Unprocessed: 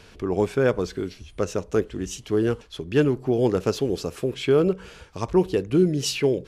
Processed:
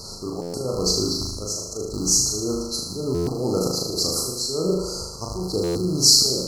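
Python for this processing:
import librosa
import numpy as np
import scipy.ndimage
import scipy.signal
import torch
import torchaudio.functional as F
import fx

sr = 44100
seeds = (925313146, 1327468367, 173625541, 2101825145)

p1 = fx.rattle_buzz(x, sr, strikes_db=-36.0, level_db=-22.0)
p2 = fx.brickwall_bandstop(p1, sr, low_hz=1400.0, high_hz=4000.0)
p3 = fx.auto_swell(p2, sr, attack_ms=326.0)
p4 = fx.over_compress(p3, sr, threshold_db=-38.0, ratio=-1.0)
p5 = p3 + F.gain(torch.from_numpy(p4), -2.0).numpy()
p6 = fx.high_shelf_res(p5, sr, hz=3200.0, db=9.5, q=1.5)
p7 = fx.room_flutter(p6, sr, wall_m=6.6, rt60_s=0.91)
y = fx.buffer_glitch(p7, sr, at_s=(0.41, 3.14, 5.63), block=512, repeats=10)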